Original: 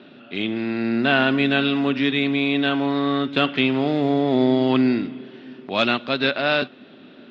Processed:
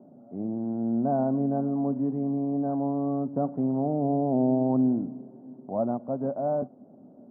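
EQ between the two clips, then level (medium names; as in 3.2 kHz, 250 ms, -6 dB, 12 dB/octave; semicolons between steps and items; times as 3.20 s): steep low-pass 780 Hz 36 dB/octave; bass shelf 67 Hz -10.5 dB; peaking EQ 380 Hz -10 dB 0.86 oct; 0.0 dB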